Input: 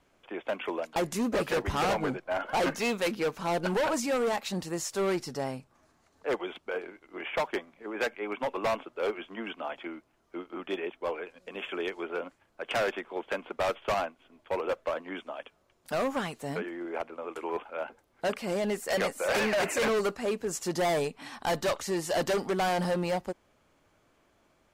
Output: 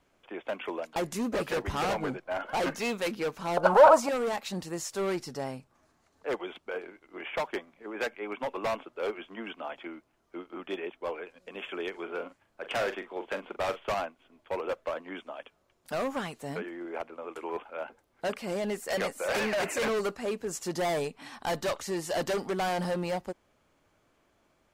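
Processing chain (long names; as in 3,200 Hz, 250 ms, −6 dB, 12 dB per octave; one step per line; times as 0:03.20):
0:03.57–0:04.09: flat-topped bell 850 Hz +15.5 dB
0:11.90–0:13.90: double-tracking delay 42 ms −10 dB
level −2 dB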